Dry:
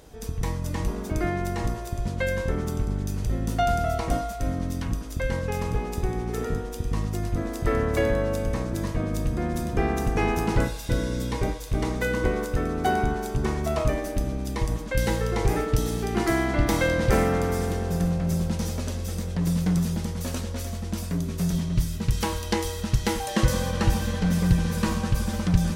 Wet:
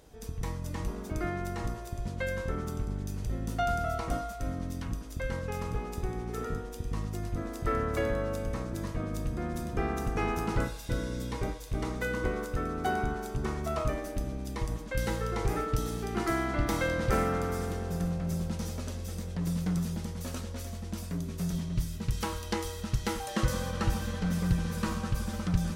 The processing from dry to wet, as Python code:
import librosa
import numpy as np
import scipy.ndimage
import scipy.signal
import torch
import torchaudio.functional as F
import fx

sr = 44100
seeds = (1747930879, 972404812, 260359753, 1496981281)

y = fx.dynamic_eq(x, sr, hz=1300.0, q=5.7, threshold_db=-51.0, ratio=4.0, max_db=8)
y = y * 10.0 ** (-7.0 / 20.0)